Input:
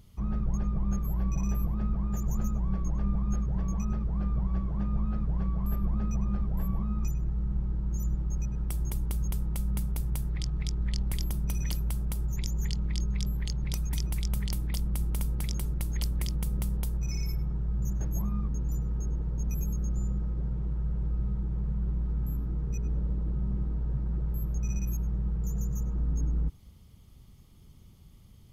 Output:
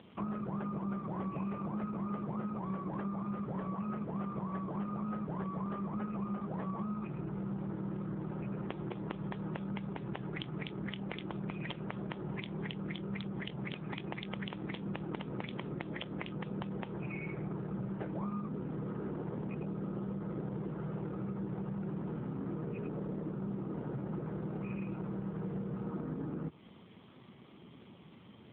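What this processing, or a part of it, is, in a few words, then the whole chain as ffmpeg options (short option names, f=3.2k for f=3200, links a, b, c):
voicemail: -af "highpass=310,lowpass=2.9k,acompressor=threshold=-49dB:ratio=8,volume=15dB" -ar 8000 -c:a libopencore_amrnb -b:a 7400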